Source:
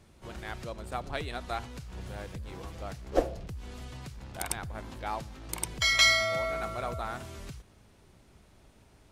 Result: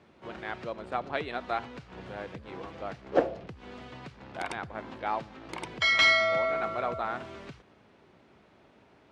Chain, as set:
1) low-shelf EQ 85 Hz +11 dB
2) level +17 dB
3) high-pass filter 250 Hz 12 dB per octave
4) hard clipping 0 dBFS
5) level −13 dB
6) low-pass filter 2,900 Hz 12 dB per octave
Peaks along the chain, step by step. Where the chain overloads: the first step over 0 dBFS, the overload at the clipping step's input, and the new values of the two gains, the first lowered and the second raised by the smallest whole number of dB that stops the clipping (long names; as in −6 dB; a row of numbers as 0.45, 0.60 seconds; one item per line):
−7.0, +10.0, +8.0, 0.0, −13.0, −12.5 dBFS
step 2, 8.0 dB
step 2 +9 dB, step 5 −5 dB